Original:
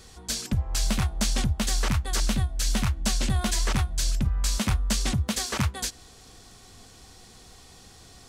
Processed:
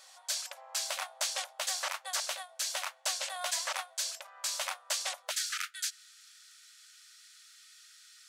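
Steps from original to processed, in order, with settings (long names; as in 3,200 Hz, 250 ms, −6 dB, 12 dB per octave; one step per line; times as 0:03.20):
linear-phase brick-wall high-pass 510 Hz, from 0:05.30 1,200 Hz
level −3.5 dB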